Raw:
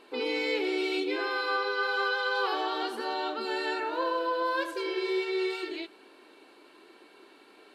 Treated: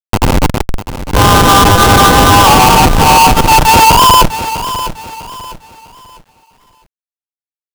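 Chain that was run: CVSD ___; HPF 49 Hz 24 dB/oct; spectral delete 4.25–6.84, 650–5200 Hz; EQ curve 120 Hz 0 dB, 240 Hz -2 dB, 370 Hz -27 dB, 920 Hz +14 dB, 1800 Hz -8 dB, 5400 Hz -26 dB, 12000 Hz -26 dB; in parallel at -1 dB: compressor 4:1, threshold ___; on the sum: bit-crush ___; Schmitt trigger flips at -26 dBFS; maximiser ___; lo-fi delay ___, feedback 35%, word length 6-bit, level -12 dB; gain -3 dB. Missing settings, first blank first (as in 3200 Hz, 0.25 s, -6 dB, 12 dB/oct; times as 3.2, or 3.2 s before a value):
64 kbps, -39 dBFS, 8-bit, +26.5 dB, 0.651 s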